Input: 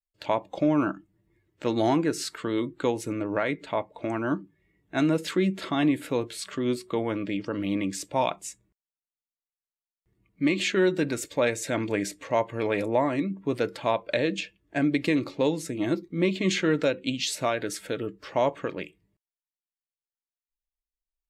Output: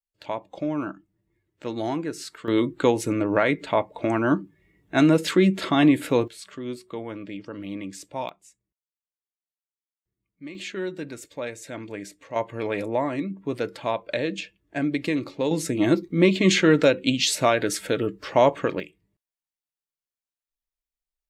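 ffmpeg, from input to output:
-af "asetnsamples=n=441:p=0,asendcmd='2.48 volume volume 6dB;6.28 volume volume -6dB;8.29 volume volume -15dB;10.55 volume volume -8dB;12.36 volume volume -1dB;15.51 volume volume 6.5dB;18.8 volume volume -1dB',volume=0.596"

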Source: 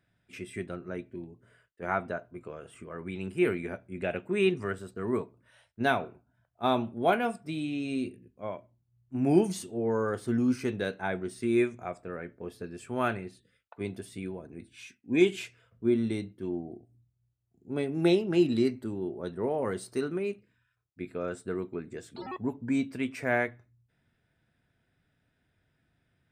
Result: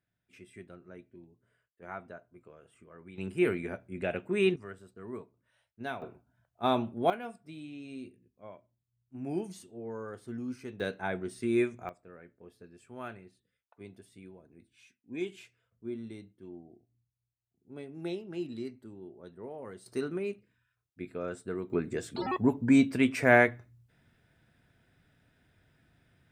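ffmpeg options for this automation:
-af "asetnsamples=n=441:p=0,asendcmd='3.18 volume volume -1dB;4.56 volume volume -11.5dB;6.02 volume volume -1dB;7.1 volume volume -11.5dB;10.8 volume volume -2dB;11.89 volume volume -13dB;19.86 volume volume -2.5dB;21.7 volume volume 6.5dB',volume=0.251"

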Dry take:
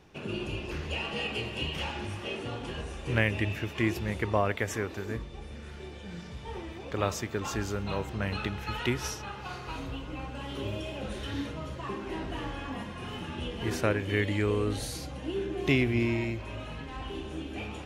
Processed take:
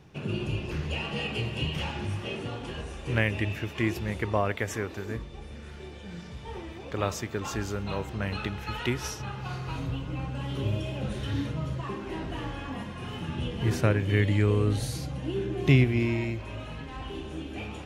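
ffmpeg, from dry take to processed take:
-af "asetnsamples=n=441:p=0,asendcmd='2.46 equalizer g 1.5;9.19 equalizer g 12;11.81 equalizer g 5;13.23 equalizer g 11;15.84 equalizer g 3',equalizer=f=130:t=o:w=1.1:g=10"

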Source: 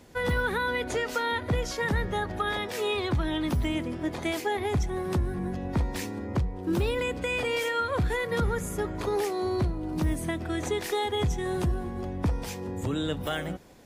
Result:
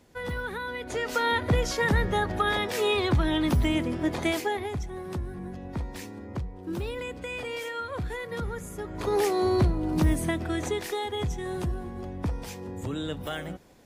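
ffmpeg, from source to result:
-af "volume=5.01,afade=t=in:st=0.83:d=0.44:silence=0.334965,afade=t=out:st=4.26:d=0.48:silence=0.334965,afade=t=in:st=8.86:d=0.41:silence=0.298538,afade=t=out:st=10:d=0.98:silence=0.421697"

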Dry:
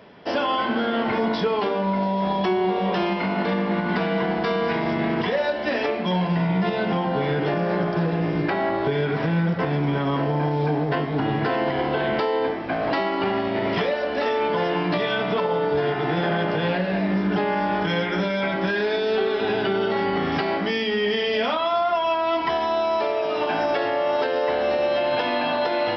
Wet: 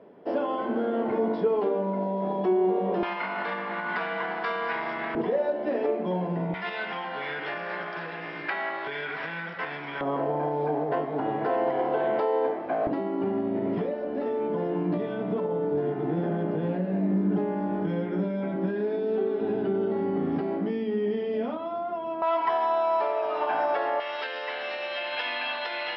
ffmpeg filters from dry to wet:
-af "asetnsamples=n=441:p=0,asendcmd='3.03 bandpass f 1400;5.15 bandpass f 410;6.54 bandpass f 1900;10.01 bandpass f 610;12.87 bandpass f 260;22.22 bandpass f 960;24 bandpass f 2400',bandpass=f=400:t=q:w=1.2:csg=0"

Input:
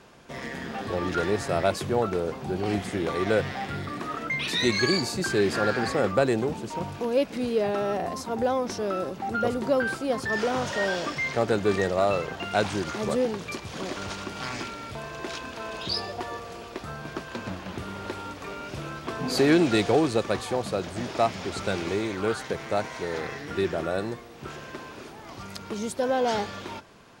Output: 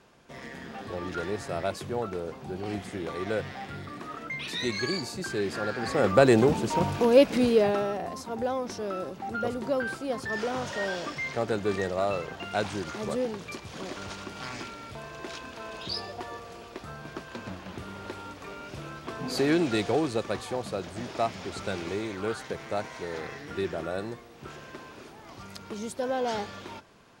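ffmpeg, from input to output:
-af "volume=2,afade=t=in:st=5.79:d=0.61:silence=0.237137,afade=t=out:st=7.37:d=0.57:silence=0.298538"

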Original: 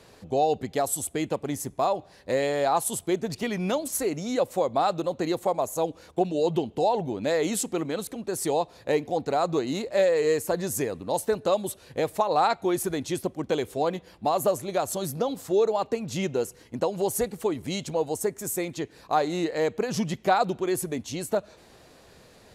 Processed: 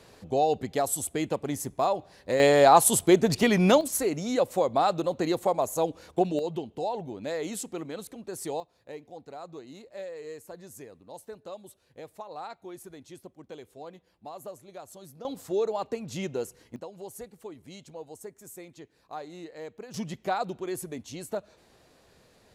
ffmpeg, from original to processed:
-af "asetnsamples=n=441:p=0,asendcmd='2.4 volume volume 7dB;3.81 volume volume 0dB;6.39 volume volume -7.5dB;8.6 volume volume -17.5dB;15.25 volume volume -5dB;16.76 volume volume -15.5dB;19.94 volume volume -7dB',volume=0.891"

